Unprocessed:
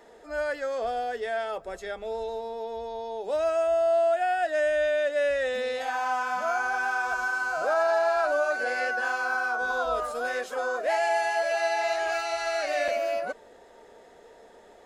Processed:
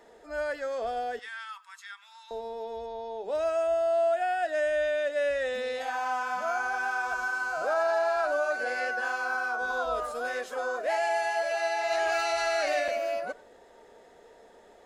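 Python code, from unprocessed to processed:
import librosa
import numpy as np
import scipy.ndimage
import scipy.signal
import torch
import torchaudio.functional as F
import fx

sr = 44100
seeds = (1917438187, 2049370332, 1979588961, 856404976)

y = fx.cheby1_highpass(x, sr, hz=970.0, order=6, at=(1.19, 2.31))
y = fx.high_shelf(y, sr, hz=5500.0, db=-7.5, at=(2.86, 3.35))
y = y + 10.0 ** (-21.5 / 20.0) * np.pad(y, (int(94 * sr / 1000.0), 0))[:len(y)]
y = fx.env_flatten(y, sr, amount_pct=50, at=(11.9, 12.79), fade=0.02)
y = y * 10.0 ** (-2.5 / 20.0)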